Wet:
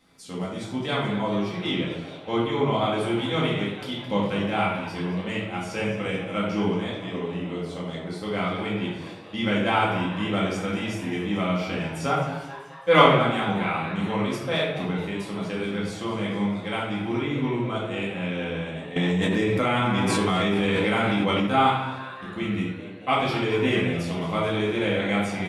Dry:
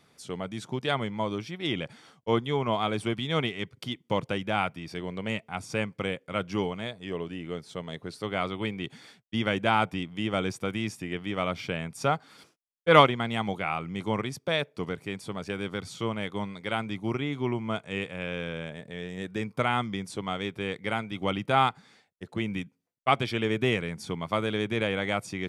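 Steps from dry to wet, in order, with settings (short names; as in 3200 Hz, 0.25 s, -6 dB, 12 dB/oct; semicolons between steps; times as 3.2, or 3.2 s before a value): frequency-shifting echo 0.216 s, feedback 63%, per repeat +130 Hz, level -14 dB; shoebox room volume 230 m³, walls mixed, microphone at 2.1 m; 18.96–21.47 fast leveller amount 100%; gain -4 dB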